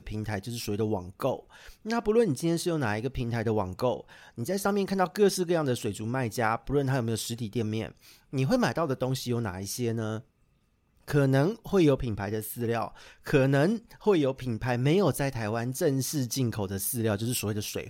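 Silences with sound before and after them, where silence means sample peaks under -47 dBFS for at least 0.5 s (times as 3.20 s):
10.21–11.08 s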